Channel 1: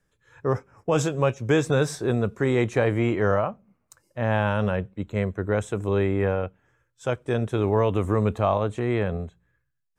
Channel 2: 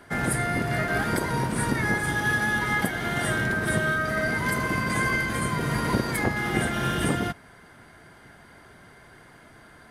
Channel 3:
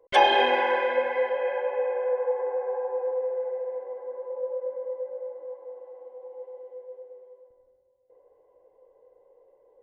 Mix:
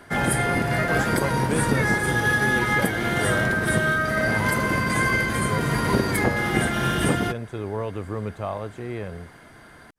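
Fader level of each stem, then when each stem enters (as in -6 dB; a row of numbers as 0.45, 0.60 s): -7.5, +3.0, -12.5 dB; 0.00, 0.00, 0.00 s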